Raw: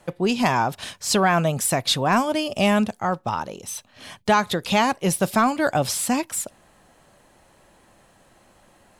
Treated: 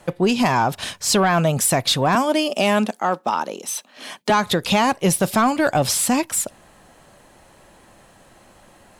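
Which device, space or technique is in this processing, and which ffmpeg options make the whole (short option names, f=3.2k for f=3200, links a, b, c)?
soft clipper into limiter: -filter_complex "[0:a]asoftclip=type=tanh:threshold=-11dB,alimiter=limit=-15.5dB:level=0:latency=1:release=134,asettb=1/sr,asplit=3[a][b][c];[a]atrim=end=2.154[d];[b]atrim=start=2.15:end=4.3,asetpts=PTS-STARTPTS,afade=t=in:d=0.004:c=qsin,afade=t=out:st=2.146:d=0.004:c=qsin,highpass=f=220:w=0.5412,highpass=f=220:w=1.3066[e];[c]atrim=start=4.296[f];[d][e]acrossfade=d=0.004:c1=hsin:c2=qsin[g];[g][f]acrossfade=d=0.004:c1=qsin:c2=hsin,volume=5.5dB"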